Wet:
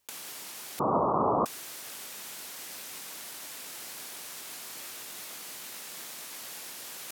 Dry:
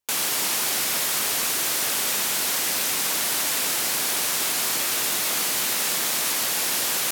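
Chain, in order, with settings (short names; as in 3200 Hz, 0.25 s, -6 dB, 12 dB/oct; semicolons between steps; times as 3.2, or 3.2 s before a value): 0.79–1.46 steep low-pass 1200 Hz 96 dB/oct; negative-ratio compressor -34 dBFS, ratio -0.5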